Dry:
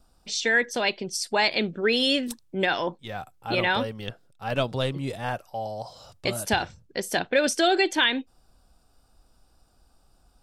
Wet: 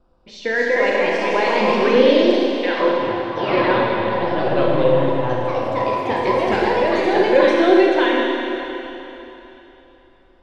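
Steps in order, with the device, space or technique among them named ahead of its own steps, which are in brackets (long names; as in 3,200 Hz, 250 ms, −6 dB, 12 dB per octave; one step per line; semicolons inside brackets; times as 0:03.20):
0:02.40–0:02.80: Bessel high-pass filter 1,300 Hz
four-comb reverb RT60 3.3 s, combs from 29 ms, DRR −2.5 dB
delay with pitch and tempo change per echo 291 ms, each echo +2 semitones, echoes 3
inside a cardboard box (low-pass filter 2,500 Hz 12 dB per octave; hollow resonant body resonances 360/510/1,000 Hz, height 12 dB, ringing for 55 ms)
level −1 dB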